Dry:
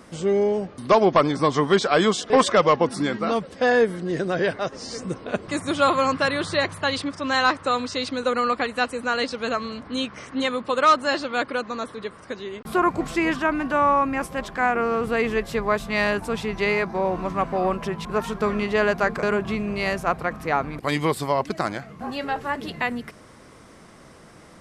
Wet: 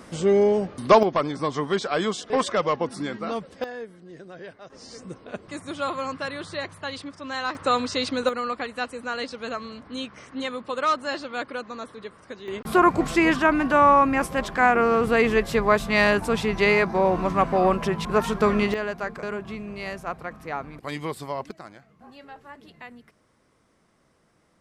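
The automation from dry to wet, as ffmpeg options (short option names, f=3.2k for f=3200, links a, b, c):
-af "asetnsamples=n=441:p=0,asendcmd='1.03 volume volume -6dB;3.64 volume volume -18dB;4.7 volume volume -9dB;7.55 volume volume 1dB;8.29 volume volume -6dB;12.48 volume volume 3dB;18.74 volume volume -8.5dB;21.51 volume volume -17dB',volume=2dB"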